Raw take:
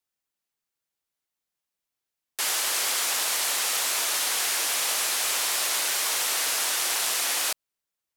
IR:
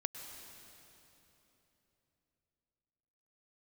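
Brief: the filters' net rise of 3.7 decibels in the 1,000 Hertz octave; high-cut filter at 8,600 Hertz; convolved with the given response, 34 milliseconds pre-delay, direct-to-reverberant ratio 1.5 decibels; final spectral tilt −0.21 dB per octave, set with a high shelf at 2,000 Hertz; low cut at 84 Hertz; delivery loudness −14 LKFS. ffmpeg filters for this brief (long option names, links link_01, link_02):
-filter_complex "[0:a]highpass=84,lowpass=8600,equalizer=frequency=1000:width_type=o:gain=6.5,highshelf=frequency=2000:gain=-7,asplit=2[link_01][link_02];[1:a]atrim=start_sample=2205,adelay=34[link_03];[link_02][link_03]afir=irnorm=-1:irlink=0,volume=-1.5dB[link_04];[link_01][link_04]amix=inputs=2:normalize=0,volume=13dB"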